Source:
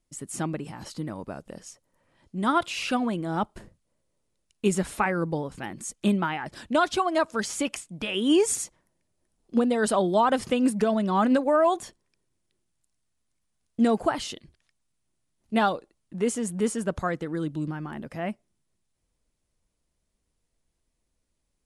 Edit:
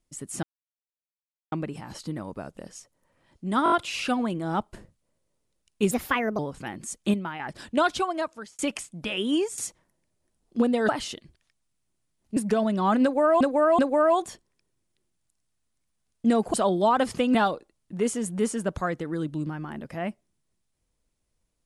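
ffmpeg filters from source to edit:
-filter_complex "[0:a]asplit=18[a][b][c][d][e][f][g][h][i][j][k][l][m][n][o][p][q][r];[a]atrim=end=0.43,asetpts=PTS-STARTPTS,afade=t=out:st=0.426:d=0.004:c=hsin,apad=pad_dur=1.09[s];[b]atrim=start=0.43:end=2.572,asetpts=PTS-STARTPTS,afade=t=in:d=0.004:c=hsin[t];[c]atrim=start=2.548:end=2.572[u];[d]atrim=start=2.548:end=2.572[v];[e]atrim=start=2.548:end=2.572[w];[f]atrim=start=2.548:end=4.744[x];[g]atrim=start=4.74:end=5.36,asetpts=PTS-STARTPTS,asetrate=57330,aresample=44100,atrim=end_sample=21032,asetpts=PTS-STARTPTS[y];[h]atrim=start=5.356:end=6.112[z];[i]atrim=start=6.108:end=6.372,asetpts=PTS-STARTPTS,volume=-6.5dB[aa];[j]atrim=start=6.368:end=7.56,asetpts=PTS-STARTPTS,afade=t=out:st=0.502:d=0.69[ab];[k]atrim=start=7.56:end=8.55,asetpts=PTS-STARTPTS,afade=t=in:d=0.004:c=hsin,afade=t=out:st=0.59:d=0.4:silence=0.188365[ac];[l]atrim=start=8.55:end=9.862,asetpts=PTS-STARTPTS,afade=t=in:d=0.004:c=hsin:silence=0.188365[ad];[m]atrim=start=14.078:end=15.562[ae];[n]atrim=start=10.668:end=11.712[af];[o]atrim=start=11.328:end=11.712[ag];[p]atrim=start=11.328:end=14.082[ah];[q]atrim=start=9.858:end=10.672[ai];[r]atrim=start=15.558[aj];[s][t]concat=n=2:v=0:a=1[ak];[ak][u]acrossfade=d=0.004:c1=hsin:c2=hsin[al];[al][v]acrossfade=d=0.004:c1=hsin:c2=hsin[am];[am][w]acrossfade=d=0.004:c1=hsin:c2=hsin[an];[an][x]acrossfade=d=0.004:c1=hsin:c2=hsin[ao];[ao][y]acrossfade=d=0.004:c1=hsin:c2=hsin[ap];[ap][z]acrossfade=d=0.004:c1=hsin:c2=hsin[aq];[aq][aa]acrossfade=d=0.004:c1=hsin:c2=hsin[ar];[ab][ac][ad]concat=n=3:v=0:a=1[as];[ar][as]acrossfade=d=0.004:c1=hsin:c2=hsin[at];[at][ae]acrossfade=d=0.004:c1=hsin:c2=hsin[au];[au][af]acrossfade=d=0.004:c1=hsin:c2=hsin[av];[av][ag]acrossfade=d=0.004:c1=hsin:c2=hsin[aw];[aw][ah]acrossfade=d=0.004:c1=hsin:c2=hsin[ax];[ax][ai]acrossfade=d=0.004:c1=hsin:c2=hsin[ay];[ay][aj]acrossfade=d=0.004:c1=hsin:c2=hsin"

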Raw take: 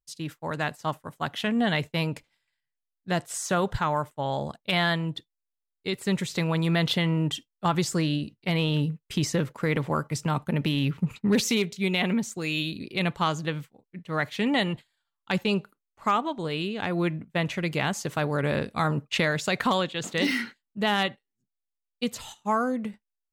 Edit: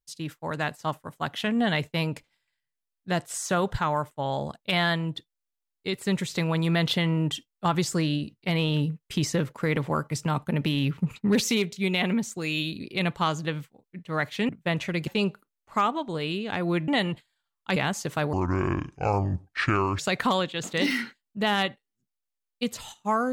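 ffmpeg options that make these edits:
-filter_complex "[0:a]asplit=7[a][b][c][d][e][f][g];[a]atrim=end=14.492[h];[b]atrim=start=17.178:end=17.762[i];[c]atrim=start=15.368:end=17.182[j];[d]atrim=start=14.488:end=15.372[k];[e]atrim=start=17.758:end=18.334[l];[f]atrim=start=18.33:end=19.39,asetpts=PTS-STARTPTS,asetrate=28224,aresample=44100[m];[g]atrim=start=19.386[n];[h][i]acrossfade=d=0.004:c1=hsin:c2=hsin[o];[o][j]acrossfade=d=0.004:c1=hsin:c2=hsin[p];[p][k]acrossfade=d=0.004:c1=hsin:c2=hsin[q];[q][l]acrossfade=d=0.004:c1=hsin:c2=hsin[r];[r][m]acrossfade=d=0.004:c1=hsin:c2=hsin[s];[s][n]acrossfade=d=0.004:c1=hsin:c2=hsin"

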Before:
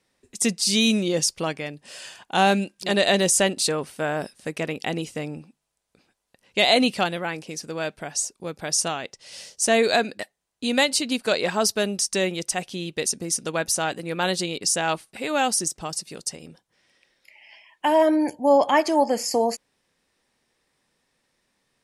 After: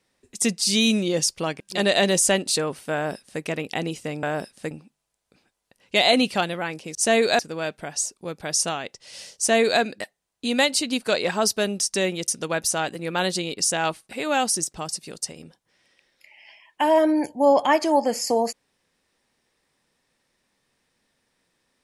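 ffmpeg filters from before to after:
-filter_complex "[0:a]asplit=7[a][b][c][d][e][f][g];[a]atrim=end=1.602[h];[b]atrim=start=2.708:end=5.342[i];[c]atrim=start=4.048:end=4.532[j];[d]atrim=start=5.338:end=7.582[k];[e]atrim=start=9.558:end=10.002[l];[f]atrim=start=7.578:end=12.472[m];[g]atrim=start=13.318[n];[h][i]acrossfade=d=0.004:c1=hsin:c2=hsin[o];[o][j]acrossfade=d=0.004:c1=hsin:c2=hsin[p];[p][k]acrossfade=d=0.004:c1=hsin:c2=hsin[q];[q][l]acrossfade=d=0.004:c1=hsin:c2=hsin[r];[r][m]acrossfade=d=0.004:c1=hsin:c2=hsin[s];[s][n]acrossfade=d=0.004:c1=hsin:c2=hsin"

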